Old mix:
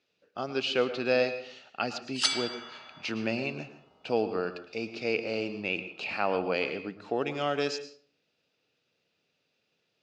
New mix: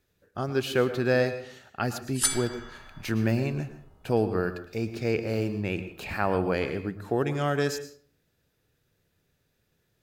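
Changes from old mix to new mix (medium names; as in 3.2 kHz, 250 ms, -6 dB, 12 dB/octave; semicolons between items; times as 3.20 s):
background -3.5 dB; master: remove cabinet simulation 290–5700 Hz, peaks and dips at 370 Hz -5 dB, 1 kHz -3 dB, 1.7 kHz -8 dB, 2.7 kHz +8 dB, 4.7 kHz +4 dB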